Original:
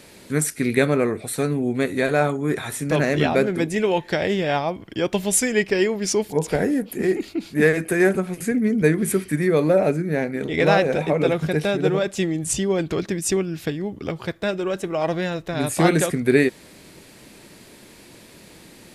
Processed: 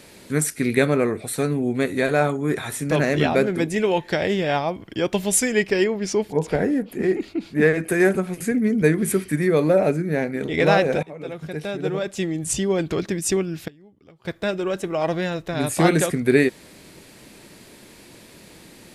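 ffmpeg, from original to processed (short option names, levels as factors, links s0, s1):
-filter_complex "[0:a]asettb=1/sr,asplit=3[s0][s1][s2];[s0]atrim=end=5.844[s3];[s1]atrim=start=5.84:end=7.84,asetpts=PTS-STARTPTS,afade=t=in:d=0.004:c=qsin,afade=t=out:st=1.996:d=0.004:c=qsin,lowpass=f=3200:p=1[s4];[s2]atrim=start=7.836[s5];[s3][s4]acrossfade=d=0.004:c1=hsin:c2=qsin[s6];[s6][s5]acrossfade=d=0.004:c1=qsin:c2=hsin,asplit=4[s7][s8][s9][s10];[s7]atrim=end=11.03,asetpts=PTS-STARTPTS,afade=t=out:st=11.026:d=0.004:c=hsin:silence=0.0891251[s11];[s8]atrim=start=11.03:end=13.68,asetpts=PTS-STARTPTS,afade=t=in:d=1.62:silence=0.0891251,afade=t=out:st=2.3:d=0.35:c=log:silence=0.0749894[s12];[s9]atrim=start=13.68:end=14.25,asetpts=PTS-STARTPTS,volume=0.075[s13];[s10]atrim=start=14.25,asetpts=PTS-STARTPTS,afade=t=in:d=0.35:c=log:silence=0.0749894[s14];[s11][s12][s13][s14]concat=n=4:v=0:a=1"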